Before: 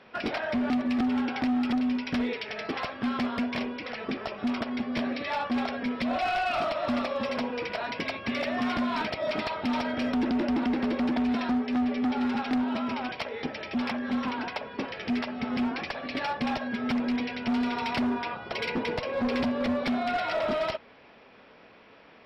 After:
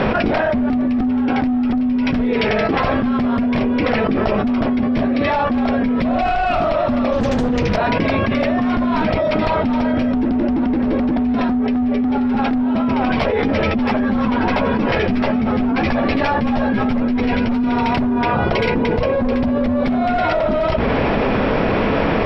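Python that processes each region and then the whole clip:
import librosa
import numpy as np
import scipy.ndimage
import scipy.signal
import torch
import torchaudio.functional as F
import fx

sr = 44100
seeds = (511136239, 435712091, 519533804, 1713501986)

y = fx.chain(x, sr, fx.bass_treble(bass_db=11, treble_db=14),
    fx.doppler_dist(depth_ms=0.76), at=(7.12, 7.76))
y = fx.chain(y, sr, fx.echo_single(ms=336, db=-14.0),
    fx.ensemble(), at=(13.05, 17.64))
y = fx.tilt_eq(y, sr, slope=-3.5)
y = fx.hum_notches(y, sr, base_hz=60, count=8)
y = fx.env_flatten(y, sr, amount_pct=100)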